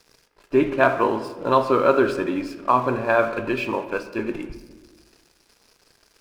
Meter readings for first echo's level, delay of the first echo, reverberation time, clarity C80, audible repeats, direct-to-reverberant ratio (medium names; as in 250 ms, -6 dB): no echo, no echo, 1.3 s, 13.0 dB, no echo, 9.0 dB